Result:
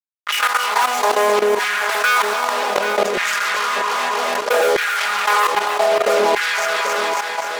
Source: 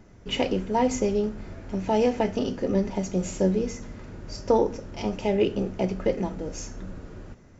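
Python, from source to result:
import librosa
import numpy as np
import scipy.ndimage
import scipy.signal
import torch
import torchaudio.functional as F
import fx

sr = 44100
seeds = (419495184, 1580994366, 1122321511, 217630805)

p1 = fx.wiener(x, sr, points=9)
p2 = fx.highpass(p1, sr, hz=180.0, slope=6)
p3 = fx.high_shelf(p2, sr, hz=3600.0, db=-11.5)
p4 = fx.resonator_bank(p3, sr, root=52, chord='major', decay_s=0.65)
p5 = fx.fuzz(p4, sr, gain_db=59.0, gate_db=-57.0)
p6 = fx.low_shelf(p5, sr, hz=450.0, db=-8.0)
p7 = p6 + fx.echo_feedback(p6, sr, ms=274, feedback_pct=54, wet_db=-6.5, dry=0)
p8 = fx.filter_lfo_highpass(p7, sr, shape='saw_down', hz=0.63, low_hz=460.0, high_hz=1800.0, q=2.3)
p9 = p8 + 0.58 * np.pad(p8, (int(4.9 * sr / 1000.0), 0))[:len(p8)]
p10 = fx.level_steps(p9, sr, step_db=17)
p11 = p10 + 10.0 ** (-19.5 / 20.0) * np.pad(p10, (int(785 * sr / 1000.0), 0))[:len(p10)]
p12 = fx.env_flatten(p11, sr, amount_pct=70)
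y = F.gain(torch.from_numpy(p12), 1.5).numpy()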